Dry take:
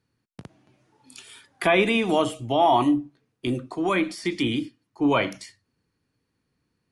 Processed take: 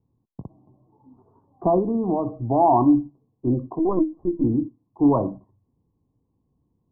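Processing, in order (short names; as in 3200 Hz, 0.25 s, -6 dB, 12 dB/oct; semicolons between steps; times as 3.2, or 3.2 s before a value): low shelf 140 Hz +10.5 dB; 1.78–2.47 compressor, threshold -20 dBFS, peak gain reduction 6 dB; rippled Chebyshev low-pass 1100 Hz, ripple 3 dB; 3.79–4.44 LPC vocoder at 8 kHz pitch kept; gain +2.5 dB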